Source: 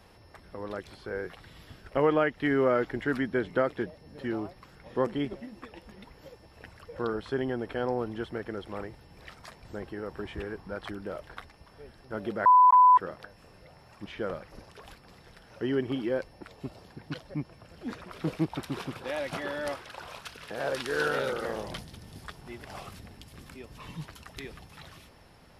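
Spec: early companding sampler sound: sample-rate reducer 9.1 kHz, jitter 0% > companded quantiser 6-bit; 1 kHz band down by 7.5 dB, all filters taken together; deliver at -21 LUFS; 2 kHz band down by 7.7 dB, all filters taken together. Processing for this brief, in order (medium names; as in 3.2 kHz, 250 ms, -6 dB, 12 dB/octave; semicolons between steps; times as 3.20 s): peaking EQ 1 kHz -6 dB; peaking EQ 2 kHz -8 dB; sample-rate reducer 9.1 kHz, jitter 0%; companded quantiser 6-bit; trim +12.5 dB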